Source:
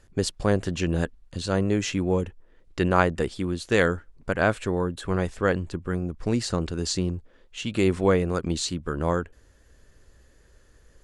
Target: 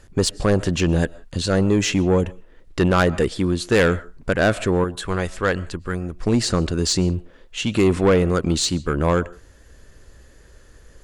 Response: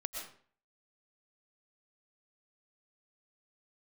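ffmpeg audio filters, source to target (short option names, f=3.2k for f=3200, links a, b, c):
-filter_complex "[0:a]asettb=1/sr,asplit=3[a][b][c];[a]atrim=end=4.844[d];[b]atrim=start=4.84:end=6.27,asetpts=PTS-STARTPTS,afade=t=in:d=0.004:c=qsin,afade=t=out:st=1.426:d=0.004:c=qsin,equalizer=f=200:w=0.31:g=-7.5[e];[c]atrim=start=6.266[f];[d][e]acrossfade=d=0.004:c1=hsin:c2=qsin[g];[g][f]acrossfade=d=0.004:c1=qsin:c2=hsin,asplit=2[h][i];[1:a]atrim=start_sample=2205,afade=t=out:st=0.24:d=0.01,atrim=end_sample=11025[j];[i][j]afir=irnorm=-1:irlink=0,volume=-19.5dB[k];[h][k]amix=inputs=2:normalize=0,asoftclip=type=tanh:threshold=-17dB,volume=7.5dB"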